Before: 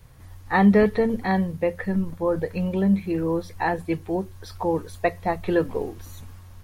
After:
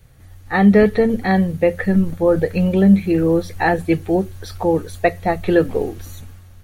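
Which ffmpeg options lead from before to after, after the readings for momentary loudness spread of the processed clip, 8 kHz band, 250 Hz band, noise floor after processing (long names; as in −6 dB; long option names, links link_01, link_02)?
9 LU, can't be measured, +7.0 dB, −43 dBFS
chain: -af "equalizer=frequency=1000:width=6.7:gain=-13.5,bandreject=frequency=5100:width=14,dynaudnorm=framelen=110:gausssize=11:maxgain=8dB,volume=1dB"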